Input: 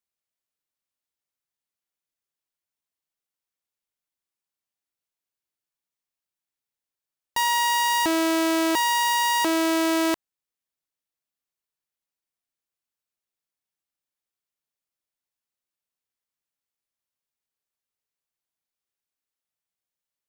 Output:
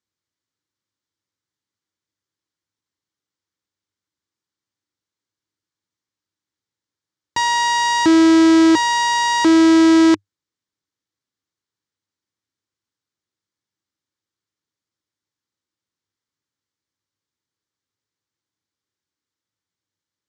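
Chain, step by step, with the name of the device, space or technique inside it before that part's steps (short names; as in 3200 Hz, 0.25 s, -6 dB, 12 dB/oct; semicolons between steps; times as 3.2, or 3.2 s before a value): low shelf 160 Hz +6.5 dB; car door speaker with a rattle (rattling part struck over -40 dBFS, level -27 dBFS; speaker cabinet 89–7000 Hz, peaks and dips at 100 Hz +9 dB, 310 Hz +7 dB, 690 Hz -10 dB, 2600 Hz -7 dB); gain +6 dB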